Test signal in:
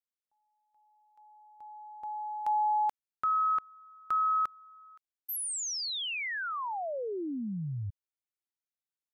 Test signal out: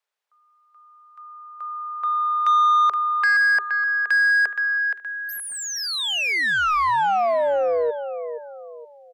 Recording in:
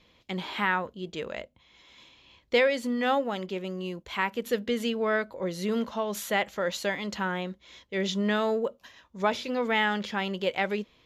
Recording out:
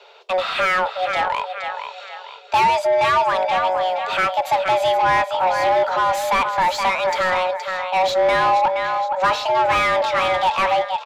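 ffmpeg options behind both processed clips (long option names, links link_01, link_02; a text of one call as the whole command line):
ffmpeg -i in.wav -filter_complex "[0:a]afreqshift=370,aecho=1:1:471|942|1413|1884:0.316|0.111|0.0387|0.0136,asplit=2[link_01][link_02];[link_02]highpass=frequency=720:poles=1,volume=23dB,asoftclip=type=tanh:threshold=-10dB[link_03];[link_01][link_03]amix=inputs=2:normalize=0,lowpass=frequency=1500:poles=1,volume=-6dB,volume=2.5dB" out.wav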